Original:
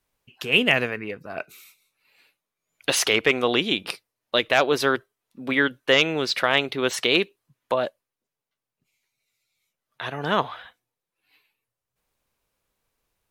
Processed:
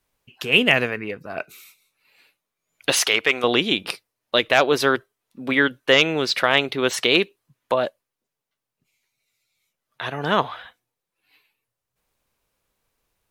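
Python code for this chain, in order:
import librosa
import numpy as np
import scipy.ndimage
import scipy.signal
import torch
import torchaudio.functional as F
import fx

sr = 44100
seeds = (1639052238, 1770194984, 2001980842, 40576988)

y = fx.low_shelf(x, sr, hz=450.0, db=-11.0, at=(2.99, 3.44))
y = y * librosa.db_to_amplitude(2.5)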